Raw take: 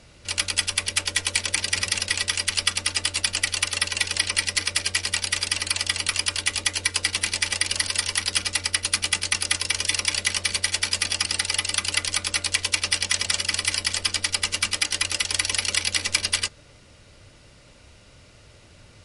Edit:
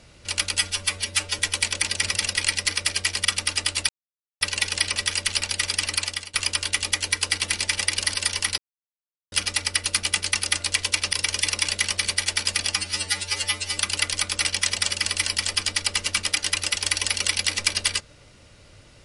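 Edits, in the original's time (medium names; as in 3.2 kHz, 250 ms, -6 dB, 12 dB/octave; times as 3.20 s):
0.58–1.12 s: stretch 1.5×
2.18–2.64 s: swap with 4.35–5.15 s
3.28–3.80 s: mute
5.71–6.07 s: fade out, to -21 dB
8.31 s: insert silence 0.74 s
11.22–11.73 s: stretch 2×
12.40–12.93 s: move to 9.59 s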